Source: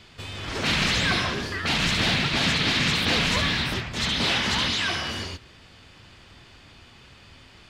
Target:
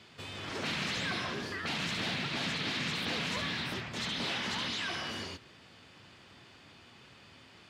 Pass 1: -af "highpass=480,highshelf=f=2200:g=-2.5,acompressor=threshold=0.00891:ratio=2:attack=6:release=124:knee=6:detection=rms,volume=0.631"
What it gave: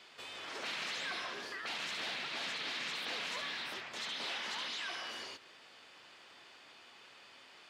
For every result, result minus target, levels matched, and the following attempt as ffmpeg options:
125 Hz band -17.5 dB; compression: peak gain reduction +4 dB
-af "highpass=130,highshelf=f=2200:g=-2.5,acompressor=threshold=0.00891:ratio=2:attack=6:release=124:knee=6:detection=rms,volume=0.631"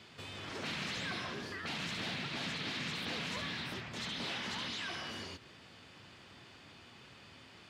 compression: peak gain reduction +5 dB
-af "highpass=130,highshelf=f=2200:g=-2.5,acompressor=threshold=0.0266:ratio=2:attack=6:release=124:knee=6:detection=rms,volume=0.631"

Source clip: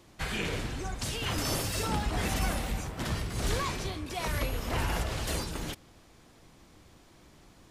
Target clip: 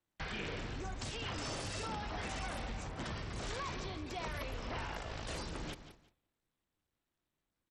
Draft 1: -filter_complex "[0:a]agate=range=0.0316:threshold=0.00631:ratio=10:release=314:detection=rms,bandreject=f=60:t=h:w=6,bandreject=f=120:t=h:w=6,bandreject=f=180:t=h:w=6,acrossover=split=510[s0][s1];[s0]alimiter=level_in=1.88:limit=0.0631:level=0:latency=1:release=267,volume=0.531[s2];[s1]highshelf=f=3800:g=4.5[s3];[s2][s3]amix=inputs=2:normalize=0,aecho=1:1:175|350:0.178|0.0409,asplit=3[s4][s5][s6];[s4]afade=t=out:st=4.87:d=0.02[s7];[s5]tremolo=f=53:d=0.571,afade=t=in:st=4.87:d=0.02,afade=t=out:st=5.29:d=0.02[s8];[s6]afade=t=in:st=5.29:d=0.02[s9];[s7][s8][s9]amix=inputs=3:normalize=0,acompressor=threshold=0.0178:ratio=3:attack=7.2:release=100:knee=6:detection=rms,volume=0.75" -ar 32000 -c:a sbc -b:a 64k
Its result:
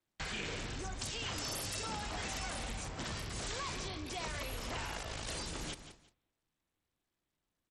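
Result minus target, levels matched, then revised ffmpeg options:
8 kHz band +6.0 dB
-filter_complex "[0:a]agate=range=0.0316:threshold=0.00631:ratio=10:release=314:detection=rms,bandreject=f=60:t=h:w=6,bandreject=f=120:t=h:w=6,bandreject=f=180:t=h:w=6,acrossover=split=510[s0][s1];[s0]alimiter=level_in=1.88:limit=0.0631:level=0:latency=1:release=267,volume=0.531[s2];[s1]highshelf=f=3800:g=-6[s3];[s2][s3]amix=inputs=2:normalize=0,aecho=1:1:175|350:0.178|0.0409,asplit=3[s4][s5][s6];[s4]afade=t=out:st=4.87:d=0.02[s7];[s5]tremolo=f=53:d=0.571,afade=t=in:st=4.87:d=0.02,afade=t=out:st=5.29:d=0.02[s8];[s6]afade=t=in:st=5.29:d=0.02[s9];[s7][s8][s9]amix=inputs=3:normalize=0,acompressor=threshold=0.0178:ratio=3:attack=7.2:release=100:knee=6:detection=rms,volume=0.75" -ar 32000 -c:a sbc -b:a 64k

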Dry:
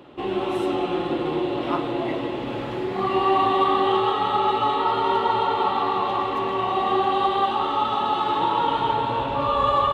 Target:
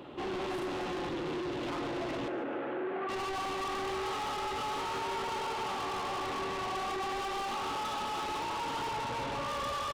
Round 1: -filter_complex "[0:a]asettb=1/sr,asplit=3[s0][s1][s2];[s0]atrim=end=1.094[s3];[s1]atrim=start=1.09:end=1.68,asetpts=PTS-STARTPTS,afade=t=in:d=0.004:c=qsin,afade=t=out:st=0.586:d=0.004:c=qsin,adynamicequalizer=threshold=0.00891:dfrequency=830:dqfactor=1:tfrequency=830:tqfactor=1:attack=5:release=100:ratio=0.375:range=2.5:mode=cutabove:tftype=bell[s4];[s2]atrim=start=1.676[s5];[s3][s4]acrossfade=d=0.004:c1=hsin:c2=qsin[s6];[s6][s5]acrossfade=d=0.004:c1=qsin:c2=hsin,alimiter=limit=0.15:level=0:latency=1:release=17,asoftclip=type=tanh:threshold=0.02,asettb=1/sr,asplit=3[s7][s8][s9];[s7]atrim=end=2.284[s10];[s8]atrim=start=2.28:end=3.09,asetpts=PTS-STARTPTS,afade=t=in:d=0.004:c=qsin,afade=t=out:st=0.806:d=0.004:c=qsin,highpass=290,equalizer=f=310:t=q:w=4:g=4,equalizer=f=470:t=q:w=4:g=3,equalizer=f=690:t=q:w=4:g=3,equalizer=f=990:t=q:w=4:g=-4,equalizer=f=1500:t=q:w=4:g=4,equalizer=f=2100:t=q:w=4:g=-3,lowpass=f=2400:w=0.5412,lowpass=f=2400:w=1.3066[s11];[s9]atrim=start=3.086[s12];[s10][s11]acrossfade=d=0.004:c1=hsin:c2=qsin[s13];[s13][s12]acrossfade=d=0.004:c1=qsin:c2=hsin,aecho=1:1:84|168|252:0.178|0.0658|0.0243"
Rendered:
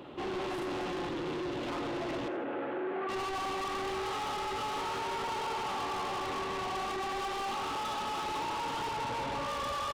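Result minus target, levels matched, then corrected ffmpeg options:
echo 60 ms early
-filter_complex "[0:a]asettb=1/sr,asplit=3[s0][s1][s2];[s0]atrim=end=1.094[s3];[s1]atrim=start=1.09:end=1.68,asetpts=PTS-STARTPTS,afade=t=in:d=0.004:c=qsin,afade=t=out:st=0.586:d=0.004:c=qsin,adynamicequalizer=threshold=0.00891:dfrequency=830:dqfactor=1:tfrequency=830:tqfactor=1:attack=5:release=100:ratio=0.375:range=2.5:mode=cutabove:tftype=bell[s4];[s2]atrim=start=1.676[s5];[s3][s4]acrossfade=d=0.004:c1=hsin:c2=qsin[s6];[s6][s5]acrossfade=d=0.004:c1=qsin:c2=hsin,alimiter=limit=0.15:level=0:latency=1:release=17,asoftclip=type=tanh:threshold=0.02,asettb=1/sr,asplit=3[s7][s8][s9];[s7]atrim=end=2.284[s10];[s8]atrim=start=2.28:end=3.09,asetpts=PTS-STARTPTS,afade=t=in:d=0.004:c=qsin,afade=t=out:st=0.806:d=0.004:c=qsin,highpass=290,equalizer=f=310:t=q:w=4:g=4,equalizer=f=470:t=q:w=4:g=3,equalizer=f=690:t=q:w=4:g=3,equalizer=f=990:t=q:w=4:g=-4,equalizer=f=1500:t=q:w=4:g=4,equalizer=f=2100:t=q:w=4:g=-3,lowpass=f=2400:w=0.5412,lowpass=f=2400:w=1.3066[s11];[s9]atrim=start=3.086[s12];[s10][s11]acrossfade=d=0.004:c1=hsin:c2=qsin[s13];[s13][s12]acrossfade=d=0.004:c1=qsin:c2=hsin,aecho=1:1:144|288|432:0.178|0.0658|0.0243"

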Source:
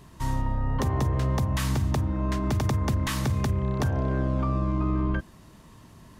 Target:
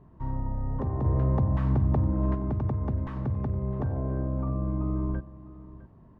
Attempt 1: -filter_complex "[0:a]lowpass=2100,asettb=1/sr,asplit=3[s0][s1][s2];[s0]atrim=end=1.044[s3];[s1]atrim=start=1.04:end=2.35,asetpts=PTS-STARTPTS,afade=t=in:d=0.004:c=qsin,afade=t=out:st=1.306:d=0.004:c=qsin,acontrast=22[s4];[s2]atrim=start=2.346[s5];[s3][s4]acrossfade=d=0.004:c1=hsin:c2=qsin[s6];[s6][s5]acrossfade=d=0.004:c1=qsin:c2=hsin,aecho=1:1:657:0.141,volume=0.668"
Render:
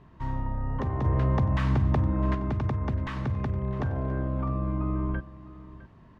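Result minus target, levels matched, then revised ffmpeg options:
2 kHz band +10.5 dB
-filter_complex "[0:a]lowpass=860,asettb=1/sr,asplit=3[s0][s1][s2];[s0]atrim=end=1.044[s3];[s1]atrim=start=1.04:end=2.35,asetpts=PTS-STARTPTS,afade=t=in:d=0.004:c=qsin,afade=t=out:st=1.306:d=0.004:c=qsin,acontrast=22[s4];[s2]atrim=start=2.346[s5];[s3][s4]acrossfade=d=0.004:c1=hsin:c2=qsin[s6];[s6][s5]acrossfade=d=0.004:c1=qsin:c2=hsin,aecho=1:1:657:0.141,volume=0.668"

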